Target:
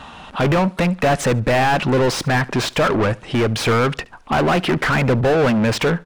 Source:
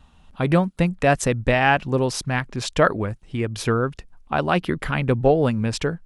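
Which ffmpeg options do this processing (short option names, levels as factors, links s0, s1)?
-filter_complex "[0:a]alimiter=limit=0.335:level=0:latency=1:release=156,asplit=2[s0][s1];[s1]highpass=f=720:p=1,volume=44.7,asoftclip=type=tanh:threshold=0.335[s2];[s0][s2]amix=inputs=2:normalize=0,lowpass=f=2000:p=1,volume=0.501,asplit=2[s3][s4];[s4]aecho=0:1:71|142:0.0708|0.0227[s5];[s3][s5]amix=inputs=2:normalize=0"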